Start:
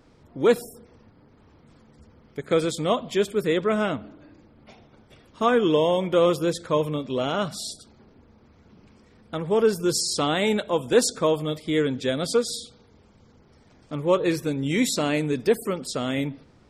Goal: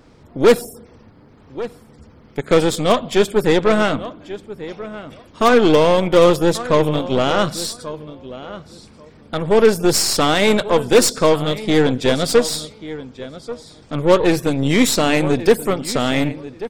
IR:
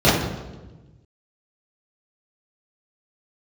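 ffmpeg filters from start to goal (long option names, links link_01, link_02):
-filter_complex "[0:a]aeval=exprs='0.299*(abs(mod(val(0)/0.299+3,4)-2)-1)':channel_layout=same,asplit=2[link_01][link_02];[link_02]adelay=1137,lowpass=frequency=3700:poles=1,volume=-15dB,asplit=2[link_03][link_04];[link_04]adelay=1137,lowpass=frequency=3700:poles=1,volume=0.17[link_05];[link_01][link_03][link_05]amix=inputs=3:normalize=0,aeval=exprs='0.335*(cos(1*acos(clip(val(0)/0.335,-1,1)))-cos(1*PI/2))+0.0299*(cos(8*acos(clip(val(0)/0.335,-1,1)))-cos(8*PI/2))':channel_layout=same,volume=7.5dB"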